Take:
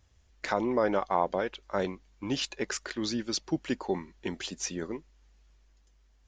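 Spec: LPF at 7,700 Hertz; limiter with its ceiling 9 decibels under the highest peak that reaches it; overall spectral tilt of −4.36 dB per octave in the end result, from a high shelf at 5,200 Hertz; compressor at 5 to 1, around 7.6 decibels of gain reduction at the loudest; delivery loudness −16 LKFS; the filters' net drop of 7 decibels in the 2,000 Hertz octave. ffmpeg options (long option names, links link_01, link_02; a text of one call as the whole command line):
ffmpeg -i in.wav -af "lowpass=7700,equalizer=frequency=2000:width_type=o:gain=-8.5,highshelf=frequency=5200:gain=-8,acompressor=threshold=-31dB:ratio=5,volume=24dB,alimiter=limit=-3dB:level=0:latency=1" out.wav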